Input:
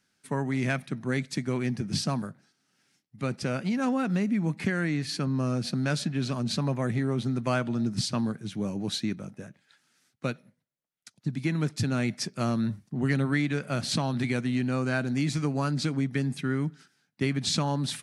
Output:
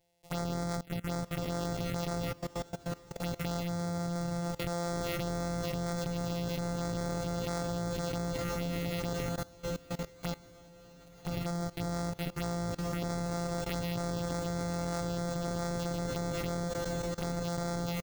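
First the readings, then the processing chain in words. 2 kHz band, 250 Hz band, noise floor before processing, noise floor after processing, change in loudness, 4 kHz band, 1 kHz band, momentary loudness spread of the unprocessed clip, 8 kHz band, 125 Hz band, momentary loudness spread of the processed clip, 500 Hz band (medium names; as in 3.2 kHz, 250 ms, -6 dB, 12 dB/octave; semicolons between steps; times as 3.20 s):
-9.0 dB, -8.0 dB, -75 dBFS, -55 dBFS, -6.5 dB, -7.5 dB, -2.0 dB, 7 LU, -4.0 dB, -6.0 dB, 4 LU, -1.5 dB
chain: sorted samples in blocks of 256 samples; comb 7.3 ms, depth 54%; touch-sensitive phaser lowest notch 220 Hz, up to 2.8 kHz, full sweep at -23.5 dBFS; on a send: echo that smears into a reverb 1083 ms, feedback 64%, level -12.5 dB; on the sum: level held to a coarse grid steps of 21 dB; trim +8 dB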